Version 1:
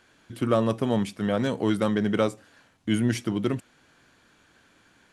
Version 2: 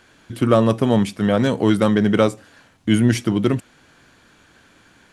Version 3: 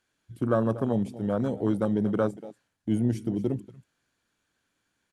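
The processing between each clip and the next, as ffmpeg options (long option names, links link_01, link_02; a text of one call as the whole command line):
ffmpeg -i in.wav -af "lowshelf=frequency=150:gain=3,volume=7dB" out.wav
ffmpeg -i in.wav -af "aemphasis=mode=production:type=cd,aecho=1:1:237:0.178,afwtdn=0.1,volume=-9dB" out.wav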